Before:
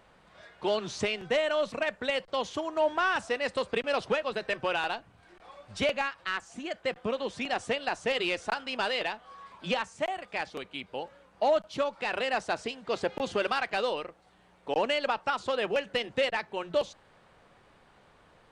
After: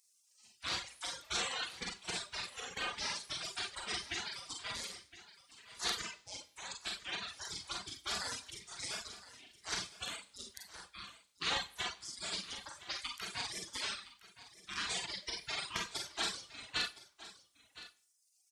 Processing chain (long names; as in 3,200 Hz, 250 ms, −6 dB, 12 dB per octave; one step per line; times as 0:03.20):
gate on every frequency bin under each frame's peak −30 dB weak
high-pass filter 42 Hz
four-comb reverb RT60 0.49 s, combs from 32 ms, DRR −0.5 dB
reverb reduction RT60 1.9 s
on a send: single-tap delay 1,015 ms −16 dB
on the sum: level +10 dB